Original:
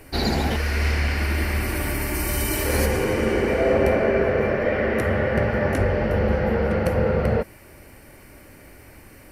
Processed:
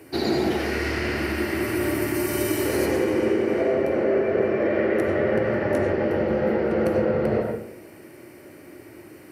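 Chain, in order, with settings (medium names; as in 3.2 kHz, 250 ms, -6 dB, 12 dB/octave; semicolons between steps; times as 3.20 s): high-pass 94 Hz 24 dB/octave; peaking EQ 350 Hz +12 dB 0.52 oct; compression, threshold -17 dBFS, peak gain reduction 8 dB; on a send: reverberation RT60 0.60 s, pre-delay 55 ms, DRR 1 dB; on the sum: trim -3.5 dB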